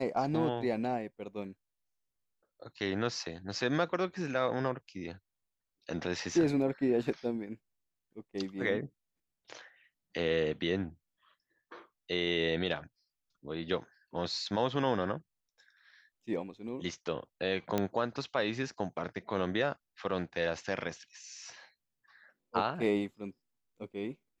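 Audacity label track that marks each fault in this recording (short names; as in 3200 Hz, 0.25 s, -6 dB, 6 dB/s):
17.780000	17.780000	pop -16 dBFS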